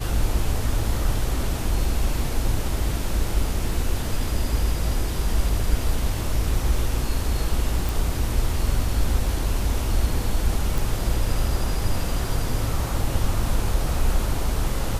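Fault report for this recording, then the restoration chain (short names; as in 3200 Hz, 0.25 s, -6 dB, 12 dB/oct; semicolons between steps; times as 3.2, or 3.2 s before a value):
7.89 pop
10.78 pop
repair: de-click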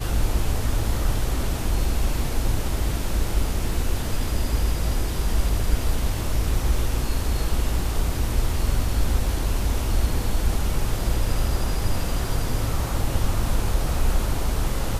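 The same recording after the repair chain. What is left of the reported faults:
none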